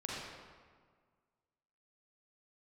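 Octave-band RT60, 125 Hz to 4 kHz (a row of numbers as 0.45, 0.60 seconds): 1.9, 1.9, 1.7, 1.7, 1.4, 1.1 seconds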